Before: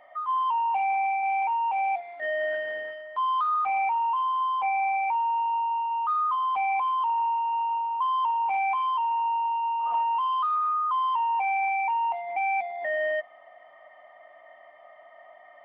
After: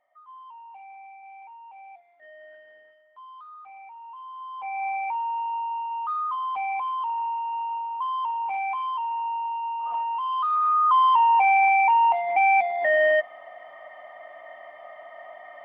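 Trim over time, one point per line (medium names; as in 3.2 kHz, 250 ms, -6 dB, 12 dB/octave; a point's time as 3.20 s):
3.88 s -19.5 dB
4.51 s -11 dB
4.86 s -2.5 dB
10.20 s -2.5 dB
10.90 s +7.5 dB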